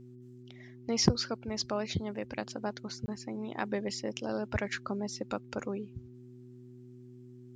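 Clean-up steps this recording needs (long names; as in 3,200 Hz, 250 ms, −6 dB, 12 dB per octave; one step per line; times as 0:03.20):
clipped peaks rebuilt −12 dBFS
hum removal 123.7 Hz, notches 3
repair the gap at 0:03.06, 20 ms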